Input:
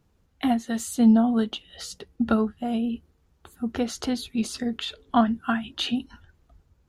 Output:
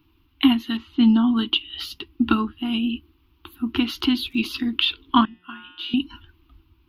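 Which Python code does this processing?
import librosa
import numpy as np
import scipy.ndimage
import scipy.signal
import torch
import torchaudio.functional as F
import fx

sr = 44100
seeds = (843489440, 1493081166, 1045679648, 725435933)

y = fx.curve_eq(x, sr, hz=(110.0, 190.0, 320.0, 540.0, 1000.0, 1800.0, 2800.0, 5000.0, 8300.0, 12000.0), db=(0, -10, 13, -29, 6, -3, 13, -2, -25, 6))
y = fx.env_lowpass(y, sr, base_hz=1400.0, full_db=-13.0, at=(0.77, 1.37))
y = fx.dmg_crackle(y, sr, seeds[0], per_s=fx.line((3.96, 49.0), (4.39, 190.0)), level_db=-47.0, at=(3.96, 4.39), fade=0.02)
y = fx.comb_fb(y, sr, f0_hz=180.0, decay_s=1.0, harmonics='all', damping=0.0, mix_pct=90, at=(5.25, 5.94))
y = y * librosa.db_to_amplitude(3.5)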